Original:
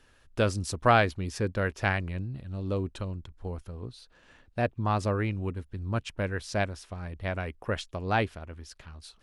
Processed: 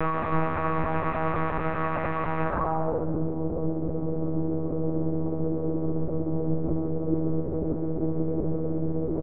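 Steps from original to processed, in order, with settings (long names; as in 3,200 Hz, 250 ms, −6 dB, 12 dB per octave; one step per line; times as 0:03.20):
extreme stretch with random phases 45×, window 1.00 s, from 0:04.95
low-pass filter sweep 2,000 Hz → 370 Hz, 0:02.42–0:03.07
one-pitch LPC vocoder at 8 kHz 160 Hz
echo with shifted repeats 137 ms, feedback 42%, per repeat +88 Hz, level −14 dB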